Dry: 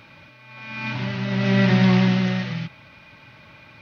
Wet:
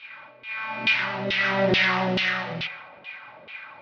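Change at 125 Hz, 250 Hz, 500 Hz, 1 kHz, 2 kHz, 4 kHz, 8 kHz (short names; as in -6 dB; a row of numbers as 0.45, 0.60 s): -13.5 dB, -11.0 dB, +1.5 dB, +3.5 dB, +5.5 dB, +4.5 dB, n/a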